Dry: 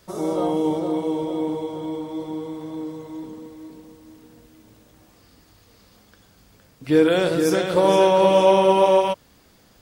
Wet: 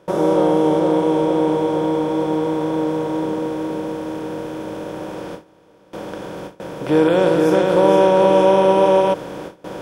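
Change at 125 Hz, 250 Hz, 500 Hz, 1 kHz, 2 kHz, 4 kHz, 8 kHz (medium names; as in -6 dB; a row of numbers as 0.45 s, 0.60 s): +5.5 dB, +5.5 dB, +4.0 dB, +3.0 dB, +2.5 dB, -0.5 dB, -1.5 dB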